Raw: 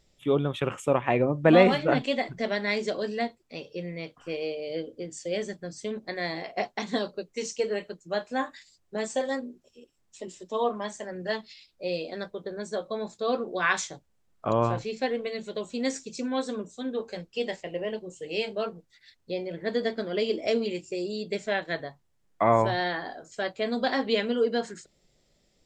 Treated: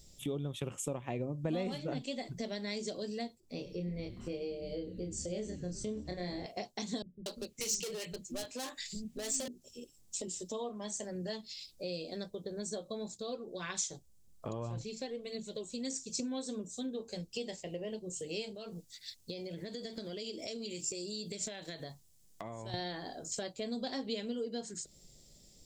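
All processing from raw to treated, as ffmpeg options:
-filter_complex "[0:a]asettb=1/sr,asplit=3[s0][s1][s2];[s0]atrim=end=3.404[s3];[s1]atrim=start=3.4:end=6.46,asetpts=PTS-STARTPTS,afade=t=in:d=0.004:c=qsin,afade=t=out:st=3.056:d=0.004:c=qsin,highshelf=f=2200:g=-9,asplit=2[s4][s5];[s5]adelay=28,volume=0.708[s6];[s4][s6]amix=inputs=2:normalize=0,atrim=end_sample=134946,asplit=8[s7][s8][s9][s10][s11][s12][s13][s14];[s8]adelay=103,afreqshift=-140,volume=0.15[s15];[s9]adelay=206,afreqshift=-280,volume=0.0977[s16];[s10]adelay=309,afreqshift=-420,volume=0.0631[s17];[s11]adelay=412,afreqshift=-560,volume=0.0412[s18];[s12]adelay=515,afreqshift=-700,volume=0.0266[s19];[s13]adelay=618,afreqshift=-840,volume=0.0174[s20];[s14]adelay=721,afreqshift=-980,volume=0.0112[s21];[s7][s15][s16][s17][s18][s19][s20][s21]amix=inputs=8:normalize=0,atrim=end_sample=134946[s22];[s2]atrim=start=6.456[s23];[s3][s22]acrossfade=d=0.004:c1=hsin:c2=qsin[s24];[s24][s23]acrossfade=d=0.004:c1=qsin:c2=hsin,asettb=1/sr,asplit=3[s25][s26][s27];[s25]atrim=end=7.024[s28];[s26]atrim=start=7.02:end=9.48,asetpts=PTS-STARTPTS,afade=t=in:d=0.004:c=qsin,afade=t=out:st=2.456:d=0.004:c=qsin,equalizer=f=2400:t=o:w=1.3:g=9.5,asoftclip=type=hard:threshold=0.0299,acrossover=split=250[s29][s30];[s30]adelay=240[s31];[s29][s31]amix=inputs=2:normalize=0,atrim=end_sample=108486[s32];[s27]atrim=start=9.476[s33];[s28][s32]acrossfade=d=0.004:c1=hsin:c2=qsin[s34];[s34][s33]acrossfade=d=0.004:c1=qsin:c2=hsin,asettb=1/sr,asplit=3[s35][s36][s37];[s35]atrim=end=13.154[s38];[s36]atrim=start=13.15:end=16.2,asetpts=PTS-STARTPTS,afade=t=in:d=0.004:c=qsin,afade=t=out:st=3.046:d=0.004:c=qsin,flanger=delay=0:depth=2.8:regen=54:speed=1.8:shape=triangular,bandreject=f=740:w=19[s39];[s37]atrim=start=16.196[s40];[s38][s39]acrossfade=d=0.004:c1=hsin:c2=qsin[s41];[s41][s40]acrossfade=d=0.004:c1=qsin:c2=hsin,asettb=1/sr,asplit=3[s42][s43][s44];[s42]atrim=end=18.554[s45];[s43]atrim=start=18.55:end=22.74,asetpts=PTS-STARTPTS,afade=t=in:d=0.004:c=qsin,afade=t=out:st=4.186:d=0.004:c=qsin,tiltshelf=f=1500:g=-3.5,acompressor=threshold=0.0126:ratio=5:attack=3.2:release=140:knee=1:detection=peak[s46];[s44]atrim=start=22.736[s47];[s45][s46]acrossfade=d=0.004:c1=hsin:c2=qsin[s48];[s48][s47]acrossfade=d=0.004:c1=qsin:c2=hsin,equalizer=f=1500:w=0.75:g=-9,acompressor=threshold=0.00562:ratio=3,bass=f=250:g=5,treble=f=4000:g=12,volume=1.41"

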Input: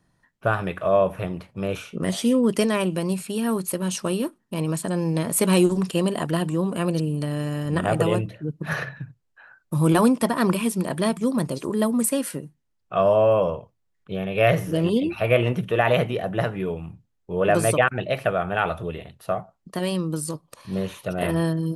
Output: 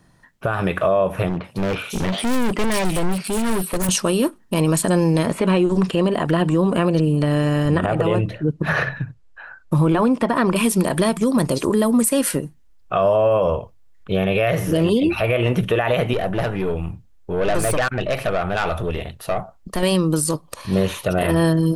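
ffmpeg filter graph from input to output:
-filter_complex "[0:a]asettb=1/sr,asplit=3[s0][s1][s2];[s0]atrim=end=1.294[s3];[s1]atrim=start=1.29:end=3.89,asetpts=PTS-STARTPTS,afade=t=in:d=0.004:c=qsin,afade=t=out:st=2.596:d=0.004:c=qsin,highpass=96,acrossover=split=3400[s4][s5];[s5]adelay=150[s6];[s4][s6]amix=inputs=2:normalize=0,atrim=end_sample=114660,volume=29.9,asoftclip=hard,volume=0.0335[s7];[s2]atrim=start=3.886[s8];[s3][s7]acrossfade=d=0.004:c1=hsin:c2=qsin[s9];[s9][s8]acrossfade=d=0.004:c1=qsin:c2=hsin,asettb=1/sr,asplit=3[s10][s11][s12];[s10]atrim=end=5.264[s13];[s11]atrim=start=5.26:end=10.56,asetpts=PTS-STARTPTS,afade=t=in:d=0.004:c=qsin,afade=t=out:st=5.296:d=0.004:c=qsin,acrossover=split=3400[s14][s15];[s15]acompressor=threshold=0.00562:ratio=4:attack=1:release=60[s16];[s14][s16]amix=inputs=2:normalize=0,lowpass=11000,highshelf=f=5100:g=-5[s17];[s12]atrim=start=10.556[s18];[s13][s17]acrossfade=d=0.004:c1=hsin:c2=qsin[s19];[s19][s18]acrossfade=d=0.004:c1=qsin:c2=hsin,asettb=1/sr,asplit=3[s20][s21][s22];[s20]atrim=end=16.134[s23];[s21]atrim=start=16.13:end=19.83,asetpts=PTS-STARTPTS,afade=t=in:d=0.004:c=qsin,afade=t=out:st=3.696:d=0.004:c=qsin,acompressor=threshold=0.0282:ratio=1.5:attack=3.2:release=140:knee=1:detection=peak,aeval=exprs='(tanh(20*val(0)+0.2)-tanh(0.2))/20':c=same[s24];[s22]atrim=start=19.826[s25];[s23][s24]acrossfade=d=0.004:c1=hsin:c2=qsin[s26];[s26][s25]acrossfade=d=0.004:c1=qsin:c2=hsin,asubboost=boost=4.5:cutoff=59,acompressor=threshold=0.0708:ratio=6,alimiter=level_in=8.91:limit=0.891:release=50:level=0:latency=1,volume=0.398"

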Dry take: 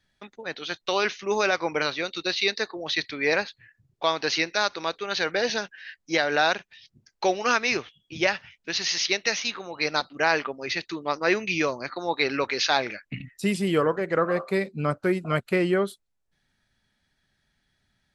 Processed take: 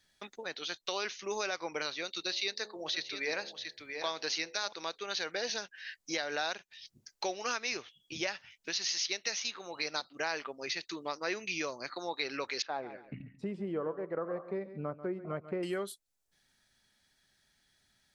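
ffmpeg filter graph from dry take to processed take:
-filter_complex "[0:a]asettb=1/sr,asplit=3[s0][s1][s2];[s0]atrim=end=2.204[s3];[s1]atrim=start=2.2:end=4.73,asetpts=PTS-STARTPTS,afade=t=in:d=0.004:c=qsin,afade=t=out:st=2.526:d=0.004:c=qsin,bandreject=f=70.57:t=h:w=4,bandreject=f=141.14:t=h:w=4,bandreject=f=211.71:t=h:w=4,bandreject=f=282.28:t=h:w=4,bandreject=f=352.85:t=h:w=4,bandreject=f=423.42:t=h:w=4,bandreject=f=493.99:t=h:w=4,bandreject=f=564.56:t=h:w=4,bandreject=f=635.13:t=h:w=4,bandreject=f=705.7:t=h:w=4,bandreject=f=776.27:t=h:w=4,bandreject=f=846.84:t=h:w=4,bandreject=f=917.41:t=h:w=4,aecho=1:1:683:0.237,atrim=end_sample=111573[s4];[s2]atrim=start=4.726[s5];[s3][s4]acrossfade=d=0.004:c1=hsin:c2=qsin[s6];[s6][s5]acrossfade=d=0.004:c1=qsin:c2=hsin,asettb=1/sr,asplit=3[s7][s8][s9];[s7]atrim=end=12.624[s10];[s8]atrim=start=12.62:end=15.63,asetpts=PTS-STARTPTS,afade=t=in:d=0.004:c=qsin,afade=t=out:st=3.006:d=0.004:c=qsin,lowpass=1000,aecho=1:1:139|278:0.158|0.0285,atrim=end_sample=132741[s11];[s9]atrim=start=15.626[s12];[s10][s11]acrossfade=d=0.004:c1=hsin:c2=qsin[s13];[s13][s12]acrossfade=d=0.004:c1=qsin:c2=hsin,bass=f=250:g=-6,treble=f=4000:g=9,acompressor=threshold=0.01:ratio=2,volume=0.891"

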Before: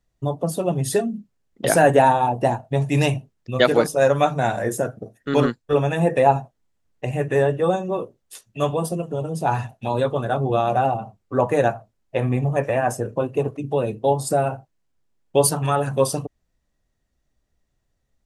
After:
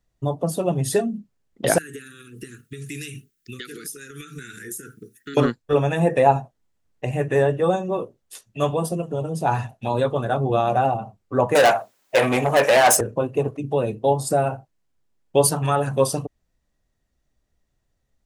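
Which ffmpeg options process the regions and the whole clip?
-filter_complex "[0:a]asettb=1/sr,asplit=3[s0][s1][s2];[s0]atrim=end=1.784[s3];[s1]atrim=start=1.78:end=5.37,asetpts=PTS-STARTPTS,afade=t=in:d=0.004:c=qsin,afade=t=out:st=3.586:d=0.004:c=qsin,aemphasis=mode=production:type=bsi,acompressor=threshold=0.0398:ratio=12:attack=3.2:release=140:knee=1:detection=peak,asuperstop=centerf=750:order=12:qfactor=0.85[s4];[s2]atrim=start=5.366[s5];[s3][s4]acrossfade=d=0.004:c1=hsin:c2=qsin[s6];[s6][s5]acrossfade=d=0.004:c1=qsin:c2=hsin,asettb=1/sr,asplit=3[s7][s8][s9];[s7]atrim=end=11.554[s10];[s8]atrim=start=11.55:end=13.01,asetpts=PTS-STARTPTS,afade=t=in:d=0.004:c=qsin,afade=t=out:st=1.456:d=0.004:c=qsin,asplit=2[s11][s12];[s12]highpass=f=720:p=1,volume=15.8,asoftclip=type=tanh:threshold=0.501[s13];[s11][s13]amix=inputs=2:normalize=0,lowpass=f=3000:p=1,volume=0.501,aemphasis=mode=production:type=bsi[s14];[s9]atrim=start=13.006[s15];[s10][s14]acrossfade=d=0.004:c1=hsin:c2=qsin[s16];[s16][s15]acrossfade=d=0.004:c1=qsin:c2=hsin"

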